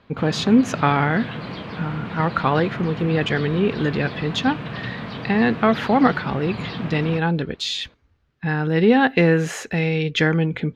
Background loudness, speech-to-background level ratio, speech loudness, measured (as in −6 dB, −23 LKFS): −32.0 LKFS, 11.0 dB, −21.0 LKFS